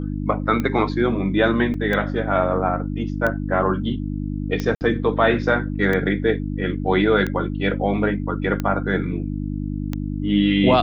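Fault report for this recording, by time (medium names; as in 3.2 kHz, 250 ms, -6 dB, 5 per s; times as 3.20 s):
hum 50 Hz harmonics 6 -26 dBFS
tick 45 rpm -12 dBFS
1.74 s: dropout 3.1 ms
4.75–4.81 s: dropout 59 ms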